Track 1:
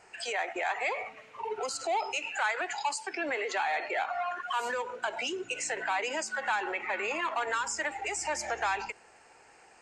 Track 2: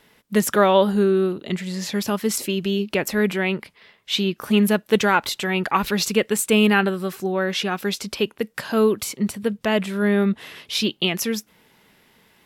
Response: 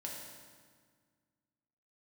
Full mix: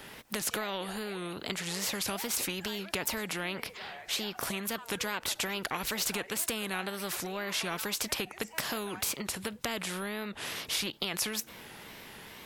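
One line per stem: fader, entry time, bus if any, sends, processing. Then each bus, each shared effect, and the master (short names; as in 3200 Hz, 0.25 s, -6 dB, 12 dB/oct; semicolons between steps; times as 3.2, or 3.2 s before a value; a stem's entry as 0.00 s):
-7.5 dB, 0.25 s, no send, auto duck -10 dB, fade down 0.85 s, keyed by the second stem
+1.0 dB, 0.00 s, no send, compressor, threshold -24 dBFS, peak gain reduction 12.5 dB; spectral compressor 2:1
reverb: off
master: wow and flutter 130 cents; ending taper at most 550 dB/s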